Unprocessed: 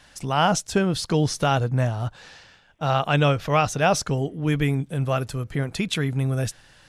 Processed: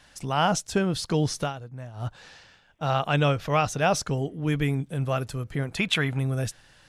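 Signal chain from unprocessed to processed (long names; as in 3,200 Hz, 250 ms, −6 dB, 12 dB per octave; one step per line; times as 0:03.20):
0:01.40–0:02.06: duck −14 dB, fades 0.13 s
0:05.77–0:06.19: flat-topped bell 1,400 Hz +8 dB 2.9 octaves
level −3 dB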